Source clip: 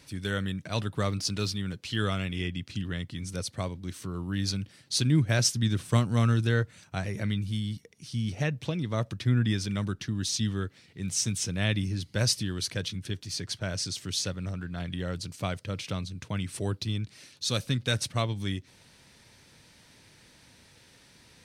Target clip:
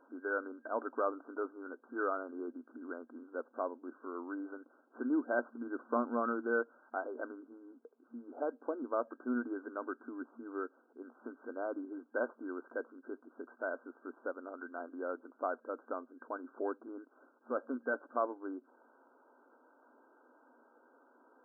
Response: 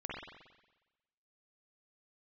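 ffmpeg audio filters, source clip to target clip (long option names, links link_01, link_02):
-filter_complex "[0:a]asplit=2[link_01][link_02];[link_02]highpass=frequency=720:poles=1,volume=11dB,asoftclip=type=tanh:threshold=-9.5dB[link_03];[link_01][link_03]amix=inputs=2:normalize=0,lowpass=frequency=1200:poles=1,volume=-6dB,afftfilt=real='re*between(b*sr/4096,230,1600)':imag='im*between(b*sr/4096,230,1600)':win_size=4096:overlap=0.75,volume=-2.5dB"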